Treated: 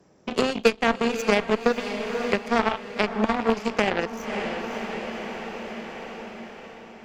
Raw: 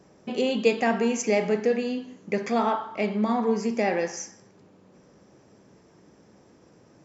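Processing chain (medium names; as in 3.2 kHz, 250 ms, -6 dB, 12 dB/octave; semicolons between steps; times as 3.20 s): rattle on loud lows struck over -28 dBFS, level -26 dBFS; Chebyshev shaper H 3 -15 dB, 6 -23 dB, 7 -24 dB, 8 -26 dB, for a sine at -8 dBFS; on a send: echo that smears into a reverb 549 ms, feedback 48%, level -14 dB; on the sum: three bands compressed up and down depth 70%; trim +8.5 dB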